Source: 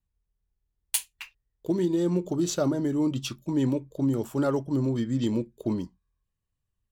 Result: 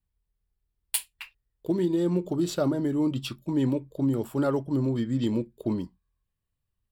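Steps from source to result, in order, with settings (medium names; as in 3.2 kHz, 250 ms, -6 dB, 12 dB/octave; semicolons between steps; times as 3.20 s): peaking EQ 6.3 kHz -14 dB 0.26 oct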